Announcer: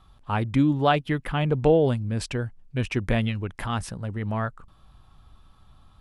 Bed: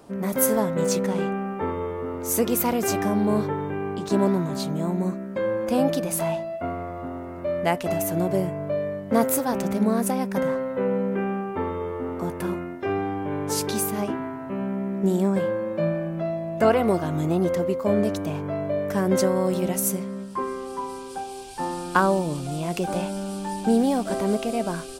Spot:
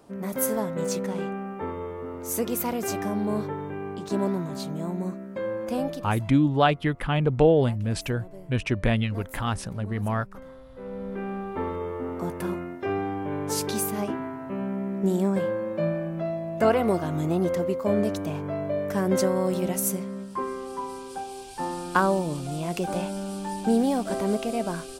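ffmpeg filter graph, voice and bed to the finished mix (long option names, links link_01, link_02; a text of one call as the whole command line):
ffmpeg -i stem1.wav -i stem2.wav -filter_complex "[0:a]adelay=5750,volume=0.5dB[link_01];[1:a]volume=14dB,afade=type=out:start_time=5.7:duration=0.5:silence=0.158489,afade=type=in:start_time=10.71:duration=0.95:silence=0.112202[link_02];[link_01][link_02]amix=inputs=2:normalize=0" out.wav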